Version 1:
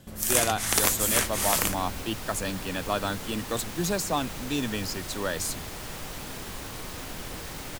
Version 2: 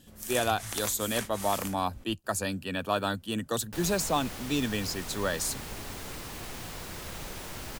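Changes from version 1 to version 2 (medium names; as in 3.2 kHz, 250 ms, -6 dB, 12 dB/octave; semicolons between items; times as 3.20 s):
first sound -9.0 dB; second sound: entry +2.85 s; reverb: off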